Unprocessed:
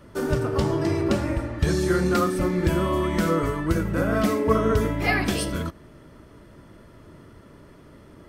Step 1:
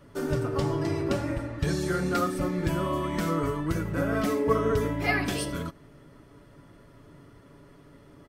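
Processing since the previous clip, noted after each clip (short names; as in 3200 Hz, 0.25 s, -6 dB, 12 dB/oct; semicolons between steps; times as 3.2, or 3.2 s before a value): comb 7.1 ms, depth 44%; gain -5 dB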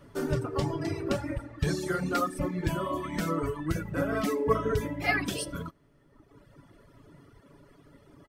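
reverb removal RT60 1.4 s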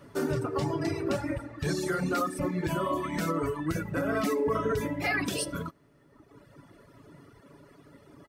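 limiter -22 dBFS, peak gain reduction 9 dB; HPF 110 Hz 6 dB/oct; notch 3200 Hz, Q 17; gain +3 dB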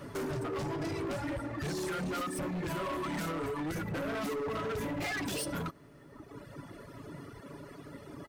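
compressor 6:1, threshold -34 dBFS, peak gain reduction 10 dB; hard clip -39.5 dBFS, distortion -8 dB; gain +6.5 dB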